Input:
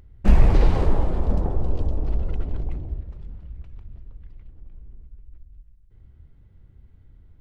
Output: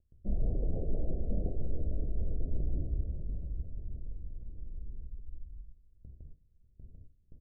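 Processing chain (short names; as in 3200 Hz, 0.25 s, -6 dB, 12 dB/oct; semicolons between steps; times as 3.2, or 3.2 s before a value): Wiener smoothing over 25 samples; gate with hold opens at -40 dBFS; feedback echo 0.594 s, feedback 54%, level -22 dB; reverse; compressor 8:1, threshold -27 dBFS, peak gain reduction 19 dB; reverse; steep low-pass 680 Hz 72 dB/oct; on a send at -16.5 dB: reverb RT60 0.40 s, pre-delay 4 ms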